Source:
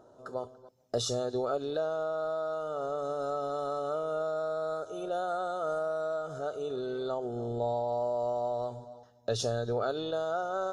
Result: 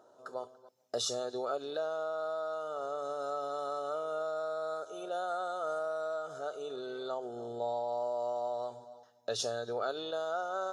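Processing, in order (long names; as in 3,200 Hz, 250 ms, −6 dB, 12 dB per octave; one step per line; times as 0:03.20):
high-pass filter 670 Hz 6 dB per octave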